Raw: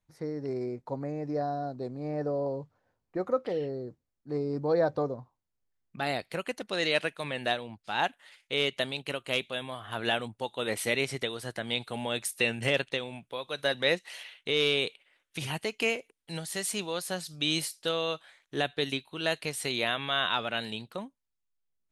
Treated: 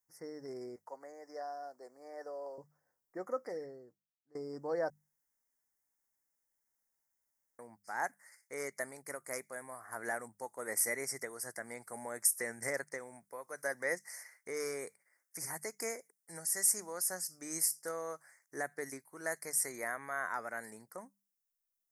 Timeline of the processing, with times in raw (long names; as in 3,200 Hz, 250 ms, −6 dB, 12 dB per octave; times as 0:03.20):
0:00.76–0:02.58: high-pass filter 560 Hz
0:03.55–0:04.35: fade out quadratic, to −21 dB
0:04.90–0:07.59: fill with room tone
whole clip: elliptic band-stop filter 2,000–5,100 Hz, stop band 40 dB; RIAA equalisation recording; mains-hum notches 50/100/150/200 Hz; level −6.5 dB